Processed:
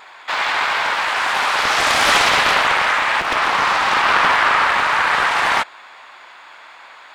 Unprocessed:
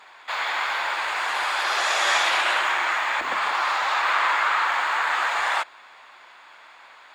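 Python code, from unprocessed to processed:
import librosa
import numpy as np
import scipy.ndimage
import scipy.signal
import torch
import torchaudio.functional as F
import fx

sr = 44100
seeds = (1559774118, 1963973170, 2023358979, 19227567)

y = fx.doppler_dist(x, sr, depth_ms=0.93)
y = y * 10.0 ** (7.0 / 20.0)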